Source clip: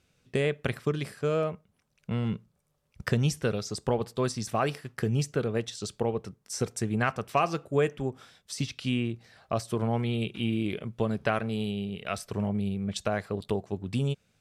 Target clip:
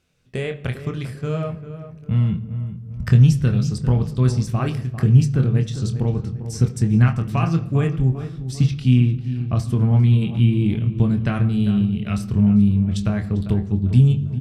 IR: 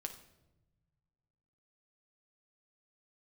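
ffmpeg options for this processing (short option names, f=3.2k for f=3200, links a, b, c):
-filter_complex "[0:a]asplit=2[a][b];[1:a]atrim=start_sample=2205,lowpass=5.6k,adelay=24[c];[b][c]afir=irnorm=-1:irlink=0,volume=-3dB[d];[a][d]amix=inputs=2:normalize=0,asubboost=boost=10:cutoff=170,asplit=2[e][f];[f]adelay=398,lowpass=f=1.8k:p=1,volume=-11.5dB,asplit=2[g][h];[h]adelay=398,lowpass=f=1.8k:p=1,volume=0.45,asplit=2[i][j];[j]adelay=398,lowpass=f=1.8k:p=1,volume=0.45,asplit=2[k][l];[l]adelay=398,lowpass=f=1.8k:p=1,volume=0.45,asplit=2[m][n];[n]adelay=398,lowpass=f=1.8k:p=1,volume=0.45[o];[g][i][k][m][o]amix=inputs=5:normalize=0[p];[e][p]amix=inputs=2:normalize=0"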